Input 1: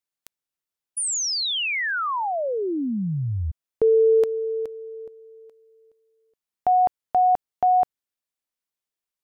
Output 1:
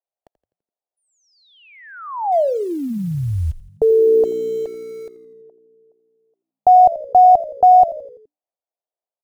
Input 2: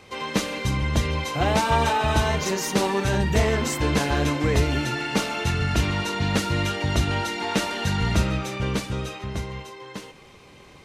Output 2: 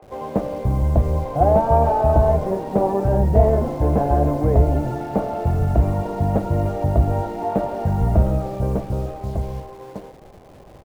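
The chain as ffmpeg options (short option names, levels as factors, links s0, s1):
-filter_complex "[0:a]lowshelf=f=100:g=10.5,acrossover=split=350[s0][s1];[s0]acrusher=bits=7:mix=0:aa=0.000001[s2];[s1]lowpass=f=680:t=q:w=3.7[s3];[s2][s3]amix=inputs=2:normalize=0,asplit=6[s4][s5][s6][s7][s8][s9];[s5]adelay=84,afreqshift=-60,volume=0.141[s10];[s6]adelay=168,afreqshift=-120,volume=0.0733[s11];[s7]adelay=252,afreqshift=-180,volume=0.038[s12];[s8]adelay=336,afreqshift=-240,volume=0.02[s13];[s9]adelay=420,afreqshift=-300,volume=0.0104[s14];[s4][s10][s11][s12][s13][s14]amix=inputs=6:normalize=0"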